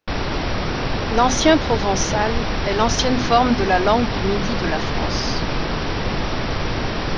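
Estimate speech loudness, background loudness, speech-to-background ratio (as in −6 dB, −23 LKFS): −20.5 LKFS, −23.5 LKFS, 3.0 dB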